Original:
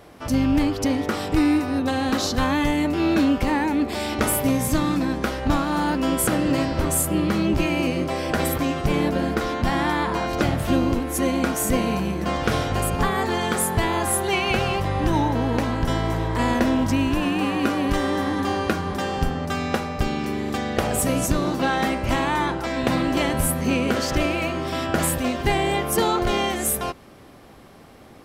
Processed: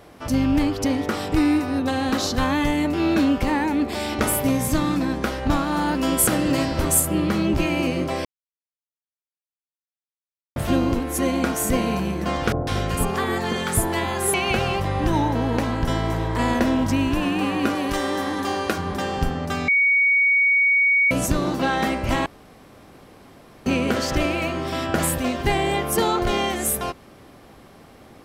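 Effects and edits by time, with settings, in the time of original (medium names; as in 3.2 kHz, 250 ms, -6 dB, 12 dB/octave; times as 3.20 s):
5.95–7.00 s: treble shelf 4 kHz +6 dB
8.25–10.56 s: mute
12.52–14.34 s: bands offset in time lows, highs 150 ms, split 910 Hz
17.75–18.78 s: tone controls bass -7 dB, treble +4 dB
19.68–21.11 s: bleep 2.24 kHz -14.5 dBFS
22.26–23.66 s: room tone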